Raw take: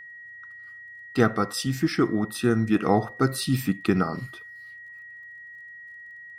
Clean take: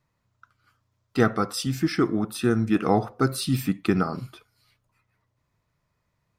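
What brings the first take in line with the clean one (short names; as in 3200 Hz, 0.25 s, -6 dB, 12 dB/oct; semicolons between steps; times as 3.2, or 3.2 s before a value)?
de-click; notch 1900 Hz, Q 30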